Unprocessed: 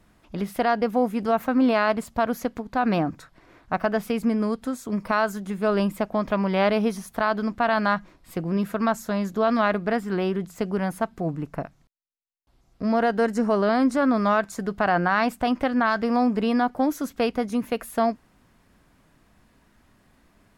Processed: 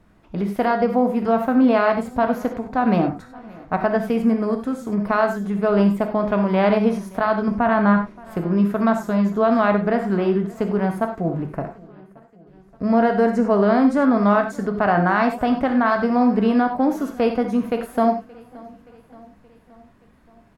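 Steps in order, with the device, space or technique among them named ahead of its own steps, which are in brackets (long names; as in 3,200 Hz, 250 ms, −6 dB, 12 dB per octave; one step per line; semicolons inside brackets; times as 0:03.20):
through cloth (high-shelf EQ 2,600 Hz −11 dB)
0:07.48–0:07.97: bass and treble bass +7 dB, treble −15 dB
repeating echo 574 ms, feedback 59%, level −23 dB
reverb whose tail is shaped and stops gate 120 ms flat, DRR 4.5 dB
level +3.5 dB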